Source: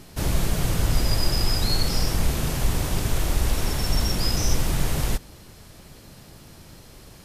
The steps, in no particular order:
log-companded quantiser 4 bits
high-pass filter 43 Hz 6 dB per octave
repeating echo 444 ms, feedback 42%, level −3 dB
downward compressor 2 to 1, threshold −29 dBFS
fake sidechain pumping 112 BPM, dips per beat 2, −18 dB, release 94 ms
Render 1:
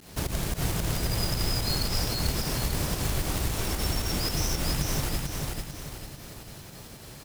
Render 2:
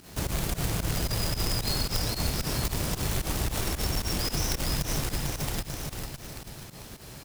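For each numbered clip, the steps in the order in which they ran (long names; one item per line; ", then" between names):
high-pass filter, then downward compressor, then fake sidechain pumping, then log-companded quantiser, then repeating echo
repeating echo, then fake sidechain pumping, then log-companded quantiser, then high-pass filter, then downward compressor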